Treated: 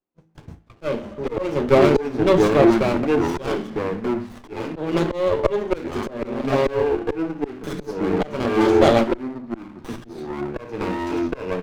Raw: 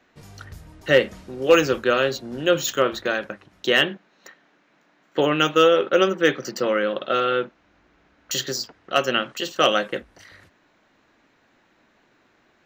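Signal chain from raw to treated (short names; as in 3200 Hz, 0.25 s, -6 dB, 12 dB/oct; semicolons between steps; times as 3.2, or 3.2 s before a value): flange 0.37 Hz, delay 5.9 ms, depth 4.4 ms, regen +57%; gate -44 dBFS, range -33 dB; notches 50/100/150/200/250/300/350/400 Hz; early reflections 14 ms -12 dB, 54 ms -17 dB; echoes that change speed 0.243 s, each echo -4 st, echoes 2, each echo -6 dB; resonant high shelf 3800 Hz -8.5 dB, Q 1.5; reverb RT60 0.75 s, pre-delay 3 ms, DRR 13 dB; speed mistake 44.1 kHz file played as 48 kHz; auto swell 0.354 s; running maximum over 17 samples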